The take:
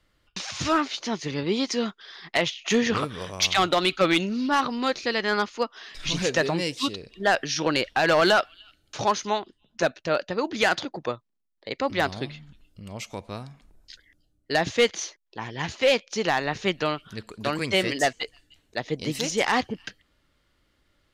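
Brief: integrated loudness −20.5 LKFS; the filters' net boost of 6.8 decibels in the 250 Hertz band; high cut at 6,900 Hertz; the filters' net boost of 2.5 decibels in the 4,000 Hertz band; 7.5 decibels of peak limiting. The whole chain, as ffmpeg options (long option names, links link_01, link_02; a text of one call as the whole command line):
ffmpeg -i in.wav -af "lowpass=6900,equalizer=frequency=250:width_type=o:gain=8.5,equalizer=frequency=4000:width_type=o:gain=3.5,volume=5.5dB,alimiter=limit=-9.5dB:level=0:latency=1" out.wav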